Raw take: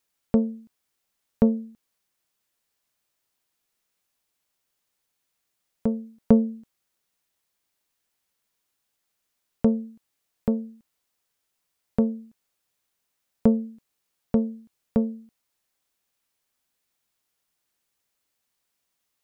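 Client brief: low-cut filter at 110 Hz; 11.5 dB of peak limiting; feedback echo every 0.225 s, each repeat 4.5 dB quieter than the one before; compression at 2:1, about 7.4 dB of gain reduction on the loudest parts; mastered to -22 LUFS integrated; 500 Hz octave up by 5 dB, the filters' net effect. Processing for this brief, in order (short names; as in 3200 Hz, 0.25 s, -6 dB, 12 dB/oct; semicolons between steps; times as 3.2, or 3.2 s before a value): HPF 110 Hz; bell 500 Hz +5.5 dB; compressor 2:1, threshold -24 dBFS; limiter -19 dBFS; feedback echo 0.225 s, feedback 60%, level -4.5 dB; gain +13 dB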